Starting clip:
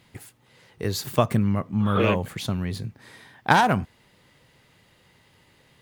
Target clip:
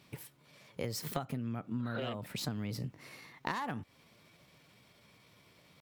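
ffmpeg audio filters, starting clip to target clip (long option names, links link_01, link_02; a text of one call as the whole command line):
ffmpeg -i in.wav -af "highpass=50,acompressor=threshold=-29dB:ratio=16,asetrate=50951,aresample=44100,atempo=0.865537,volume=-4dB" out.wav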